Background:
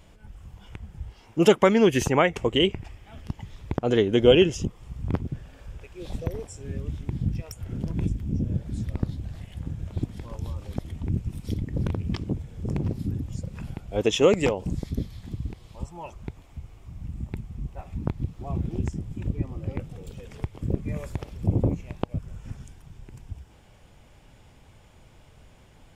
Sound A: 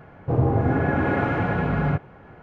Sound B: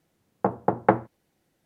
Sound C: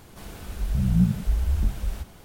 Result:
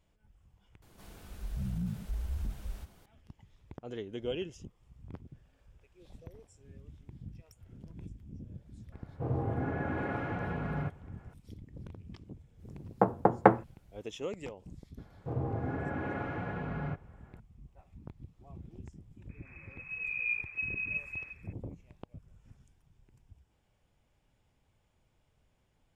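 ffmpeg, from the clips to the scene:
-filter_complex "[3:a]asplit=2[a][b];[1:a]asplit=2[c][d];[0:a]volume=-19.5dB[e];[a]alimiter=limit=-16.5dB:level=0:latency=1:release=12[f];[b]lowpass=f=2.2k:t=q:w=0.5098,lowpass=f=2.2k:t=q:w=0.6013,lowpass=f=2.2k:t=q:w=0.9,lowpass=f=2.2k:t=q:w=2.563,afreqshift=-2600[g];[e]asplit=2[h][i];[h]atrim=end=0.824[j];[f]atrim=end=2.24,asetpts=PTS-STARTPTS,volume=-11.5dB[k];[i]atrim=start=3.056[l];[c]atrim=end=2.42,asetpts=PTS-STARTPTS,volume=-12.5dB,afade=t=in:d=0.004:c=hsin,afade=t=out:st=2.416:d=0.004:c=hsin,adelay=8920[m];[2:a]atrim=end=1.65,asetpts=PTS-STARTPTS,volume=-1.5dB,afade=t=in:d=0.05,afade=t=out:st=1.6:d=0.05,adelay=12570[n];[d]atrim=end=2.42,asetpts=PTS-STARTPTS,volume=-14dB,afade=t=in:d=0.004:c=hsin,afade=t=out:st=2.416:d=0.004:c=hsin,adelay=14980[o];[g]atrim=end=2.24,asetpts=PTS-STARTPTS,volume=-14.5dB,afade=t=in:d=0.004:c=hsin,afade=t=out:st=2.236:d=0.004:c=hsin,adelay=19290[p];[j][k]acrossfade=d=0.004:c1=hsin:c2=hsin[q];[q][l]acrossfade=d=0.004:c1=hsin:c2=hsin[r];[r][m][n][o][p]amix=inputs=5:normalize=0"

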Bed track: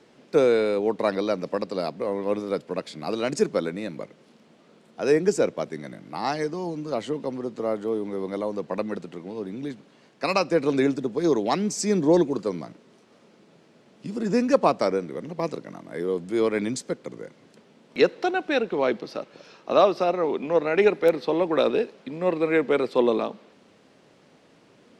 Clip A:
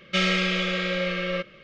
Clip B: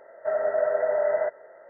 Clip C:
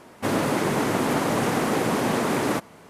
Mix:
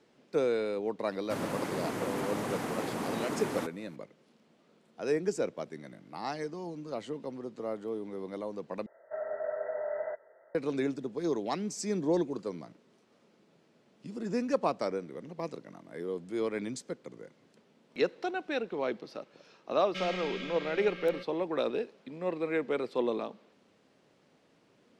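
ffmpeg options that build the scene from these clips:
-filter_complex "[0:a]volume=-9.5dB,asplit=2[a][b];[a]atrim=end=8.864[c];[2:a]atrim=end=1.69,asetpts=PTS-STARTPTS,volume=-11dB[d];[b]atrim=start=10.546[e];[3:a]atrim=end=2.89,asetpts=PTS-STARTPTS,volume=-12dB,afade=t=in:d=0.004:c=hsin,afade=t=out:st=2.886:d=0.004:c=hsin,adelay=1070[f];[1:a]atrim=end=1.63,asetpts=PTS-STARTPTS,volume=-15.5dB,afade=t=in:d=0.004:c=hsin,afade=t=out:st=1.626:d=0.004:c=hsin,adelay=19810[g];[c][d]acrossfade=d=0.004:c1=hsin:c2=hsin[h];[h][e]acrossfade=d=0.004:c1=hsin:c2=hsin[i];[i][f][g]amix=inputs=3:normalize=0"

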